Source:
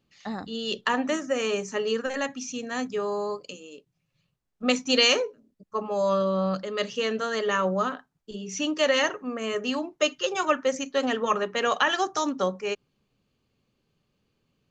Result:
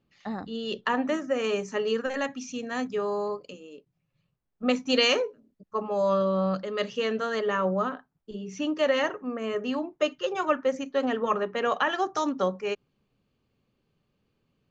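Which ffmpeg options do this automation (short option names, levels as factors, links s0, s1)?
-af "asetnsamples=n=441:p=0,asendcmd='1.44 lowpass f 3500;3.28 lowpass f 1700;4.88 lowpass f 2900;7.4 lowpass f 1500;12.15 lowpass f 3000',lowpass=f=2000:p=1"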